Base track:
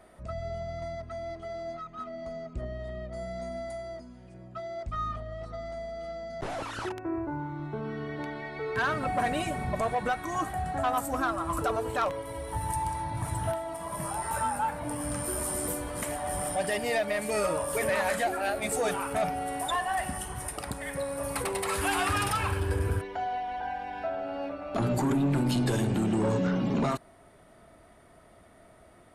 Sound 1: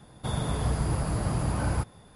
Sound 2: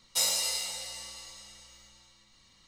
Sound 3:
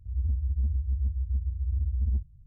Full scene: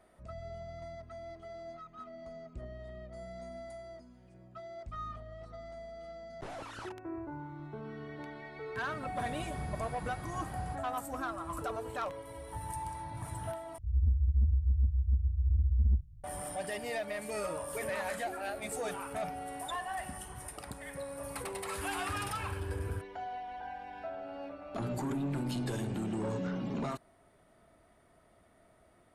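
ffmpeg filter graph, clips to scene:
-filter_complex "[0:a]volume=-8.5dB,asplit=2[a][b];[a]atrim=end=13.784[c];[3:a]atrim=end=2.46[d];[b]atrim=start=16.236[e];[1:a]atrim=end=2.15,asetpts=PTS-STARTPTS,volume=-15.5dB,afade=t=in:d=0.004:c=hsin,afade=t=out:st=2.146:d=0.004:c=hsin,adelay=8920[f];[c][d]acrossfade=d=0.004:c1=hsin:c2=hsin[g];[g][e]acrossfade=d=0.004:c1=hsin:c2=hsin[h];[h][f]amix=inputs=2:normalize=0"

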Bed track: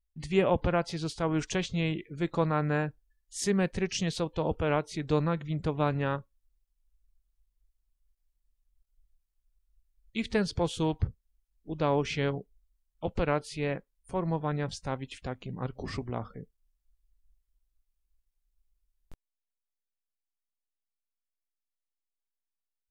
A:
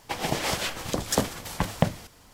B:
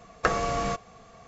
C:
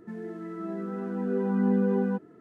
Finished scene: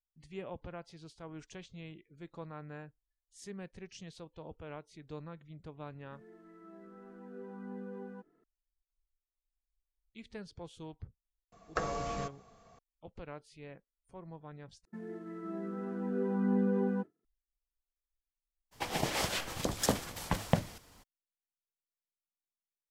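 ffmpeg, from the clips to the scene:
-filter_complex "[3:a]asplit=2[a][b];[0:a]volume=-18dB[c];[a]lowshelf=f=310:g=-8.5[d];[2:a]equalizer=f=2.3k:t=o:w=1.2:g=-4[e];[b]agate=range=-33dB:threshold=-38dB:ratio=3:release=100:detection=peak[f];[c]asplit=2[g][h];[g]atrim=end=14.854[i];[f]atrim=end=2.4,asetpts=PTS-STARTPTS,volume=-5.5dB[j];[h]atrim=start=17.246[k];[d]atrim=end=2.4,asetpts=PTS-STARTPTS,volume=-15dB,afade=t=in:d=0.004:c=hsin,afade=t=out:st=2.396:d=0.004:c=hsin,adelay=6040[l];[e]atrim=end=1.27,asetpts=PTS-STARTPTS,volume=-9dB,afade=t=in:d=0.004:c=hsin,afade=t=out:st=1.266:d=0.004:c=hsin,adelay=11520[m];[1:a]atrim=end=2.33,asetpts=PTS-STARTPTS,volume=-5.5dB,afade=t=in:d=0.02,afade=t=out:st=2.31:d=0.02,adelay=18710[n];[i][j]acrossfade=d=0.004:c1=hsin:c2=hsin[o];[o][k]acrossfade=d=0.004:c1=hsin:c2=hsin[p];[p][l][m][n]amix=inputs=4:normalize=0"

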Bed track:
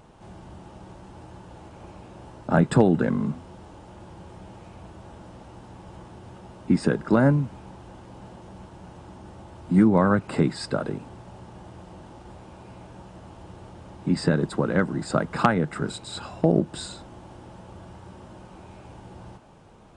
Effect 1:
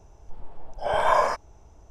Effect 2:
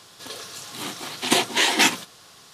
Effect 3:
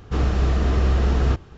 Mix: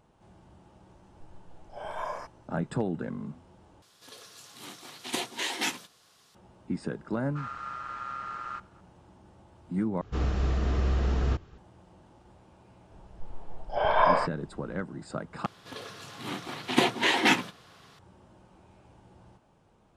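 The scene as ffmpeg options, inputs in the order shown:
-filter_complex "[1:a]asplit=2[a][b];[2:a]asplit=2[c][d];[3:a]asplit=2[e][f];[0:a]volume=-12dB[g];[e]aeval=exprs='val(0)*sin(2*PI*1300*n/s)':c=same[h];[b]aresample=11025,aresample=44100[i];[d]bass=f=250:g=5,treble=f=4k:g=-13[j];[g]asplit=4[k][l][m][n];[k]atrim=end=3.824[o];[c]atrim=end=2.53,asetpts=PTS-STARTPTS,volume=-12.5dB[p];[l]atrim=start=6.346:end=10.014[q];[f]atrim=end=1.57,asetpts=PTS-STARTPTS,volume=-7.5dB[r];[m]atrim=start=11.576:end=15.464[s];[j]atrim=end=2.53,asetpts=PTS-STARTPTS,volume=-2.5dB[t];[n]atrim=start=17.986[u];[a]atrim=end=1.9,asetpts=PTS-STARTPTS,volume=-15dB,afade=t=in:d=0.004:c=hsin,afade=t=out:st=1.896:d=0.004:c=hsin,adelay=910[v];[h]atrim=end=1.57,asetpts=PTS-STARTPTS,volume=-17dB,afade=t=in:d=0.004:c=hsin,afade=t=out:st=1.566:d=0.004:c=hsin,adelay=7240[w];[i]atrim=end=1.9,asetpts=PTS-STARTPTS,volume=-1.5dB,afade=t=in:d=0.004:c=hsin,afade=t=out:st=1.896:d=0.004:c=hsin,adelay=12910[x];[o][p]acrossfade=d=0.004:c1=hsin:c2=hsin[y];[y][q]acrossfade=d=0.004:c1=hsin:c2=hsin[z];[z][r]acrossfade=d=0.004:c1=hsin:c2=hsin[aa];[aa][s]acrossfade=d=0.004:c1=hsin:c2=hsin[ab];[ab][t]acrossfade=d=0.004:c1=hsin:c2=hsin[ac];[ac][u]acrossfade=d=0.004:c1=hsin:c2=hsin[ad];[ad][v][w][x]amix=inputs=4:normalize=0"

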